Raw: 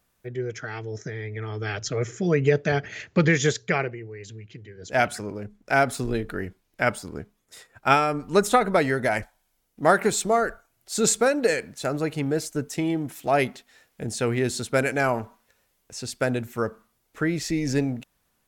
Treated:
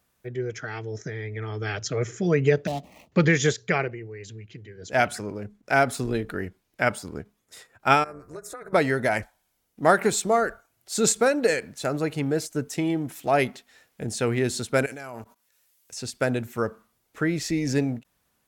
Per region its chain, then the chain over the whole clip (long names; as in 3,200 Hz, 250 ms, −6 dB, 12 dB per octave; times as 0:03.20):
0:02.67–0:03.12: running median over 25 samples + phaser with its sweep stopped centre 410 Hz, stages 6
0:08.04–0:08.73: downward compressor 16 to 1, threshold −29 dBFS + phaser with its sweep stopped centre 830 Hz, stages 6 + amplitude modulation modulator 240 Hz, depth 45%
0:14.86–0:15.97: high-shelf EQ 3,900 Hz +10 dB + output level in coarse steps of 19 dB + one half of a high-frequency compander encoder only
whole clip: high-pass filter 41 Hz; every ending faded ahead of time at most 470 dB per second